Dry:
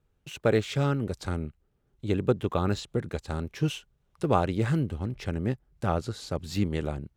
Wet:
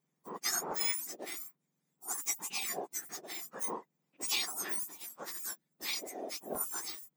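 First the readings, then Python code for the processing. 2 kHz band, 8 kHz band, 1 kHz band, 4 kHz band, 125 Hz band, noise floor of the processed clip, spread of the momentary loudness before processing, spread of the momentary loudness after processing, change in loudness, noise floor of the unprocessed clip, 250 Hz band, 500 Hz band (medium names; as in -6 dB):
-3.5 dB, +12.0 dB, -10.0 dB, +2.0 dB, -35.5 dB, -83 dBFS, 9 LU, 10 LU, -6.5 dB, -73 dBFS, -21.5 dB, -16.5 dB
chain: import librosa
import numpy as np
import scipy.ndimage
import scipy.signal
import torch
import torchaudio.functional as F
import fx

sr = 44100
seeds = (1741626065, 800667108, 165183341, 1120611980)

y = fx.octave_mirror(x, sr, pivot_hz=1700.0)
y = fx.buffer_crackle(y, sr, first_s=0.71, period_s=0.73, block=128, kind='zero')
y = F.gain(torch.from_numpy(y), -2.5).numpy()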